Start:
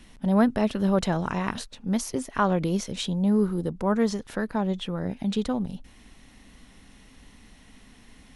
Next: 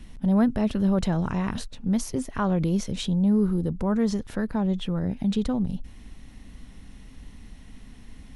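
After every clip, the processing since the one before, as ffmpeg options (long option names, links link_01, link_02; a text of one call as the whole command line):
ffmpeg -i in.wav -filter_complex "[0:a]lowshelf=frequency=220:gain=12,asplit=2[link_01][link_02];[link_02]alimiter=limit=-18.5dB:level=0:latency=1:release=31,volume=1.5dB[link_03];[link_01][link_03]amix=inputs=2:normalize=0,volume=-8.5dB" out.wav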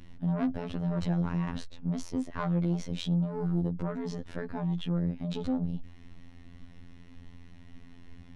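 ffmpeg -i in.wav -af "asoftclip=type=tanh:threshold=-20.5dB,adynamicsmooth=sensitivity=1.5:basefreq=5200,afftfilt=real='hypot(re,im)*cos(PI*b)':imag='0':win_size=2048:overlap=0.75" out.wav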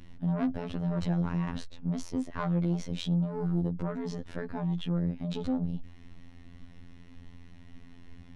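ffmpeg -i in.wav -af anull out.wav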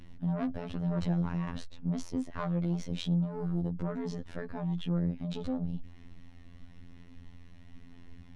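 ffmpeg -i in.wav -af "aphaser=in_gain=1:out_gain=1:delay=1.8:decay=0.2:speed=1:type=sinusoidal,volume=-2.5dB" out.wav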